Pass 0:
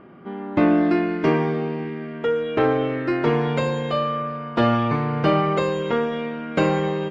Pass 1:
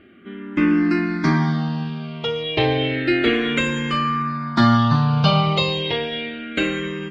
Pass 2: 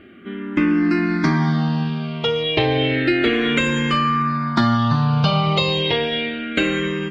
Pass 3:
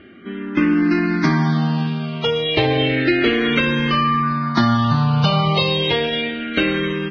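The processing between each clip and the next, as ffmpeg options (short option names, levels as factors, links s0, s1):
-filter_complex "[0:a]dynaudnorm=f=200:g=11:m=3.76,equalizer=f=500:t=o:w=1:g=-11,equalizer=f=1000:t=o:w=1:g=-4,equalizer=f=4000:t=o:w=1:g=9,asplit=2[s0][s1];[s1]afreqshift=-0.31[s2];[s0][s2]amix=inputs=2:normalize=1,volume=1.5"
-af "acompressor=threshold=0.112:ratio=4,volume=1.68"
-af "volume=1.12" -ar 16000 -c:a libvorbis -b:a 16k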